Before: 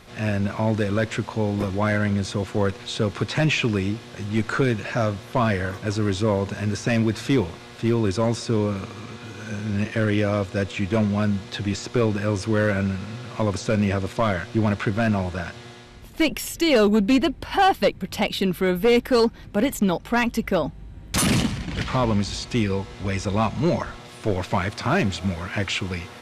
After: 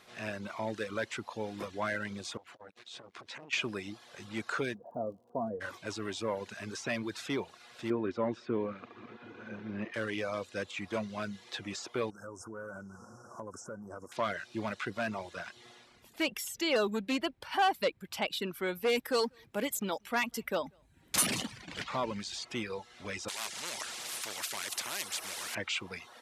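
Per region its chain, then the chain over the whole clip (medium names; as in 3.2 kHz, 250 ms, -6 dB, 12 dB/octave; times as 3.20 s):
2.37–3.53 s: treble shelf 11 kHz -11 dB + compression 3:1, threshold -33 dBFS + transformer saturation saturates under 890 Hz
4.73–5.60 s: inverse Chebyshev low-pass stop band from 2 kHz, stop band 50 dB + comb 4.2 ms, depth 38% + crackle 67 per s -50 dBFS
7.90–9.94 s: low-pass 2.1 kHz + peaking EQ 280 Hz +6.5 dB 1.4 oct
12.10–14.12 s: Chebyshev band-stop 1.5–5.4 kHz, order 5 + dynamic bell 5.5 kHz, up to -5 dB, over -54 dBFS, Q 2.1 + compression, threshold -25 dBFS
18.86–21.81 s: treble shelf 7.9 kHz +8 dB + delay 191 ms -22 dB
23.28–25.55 s: treble shelf 3.1 kHz +8.5 dB + spectrum-flattening compressor 4:1
whole clip: high-pass 540 Hz 6 dB/octave; reverb removal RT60 0.61 s; trim -7.5 dB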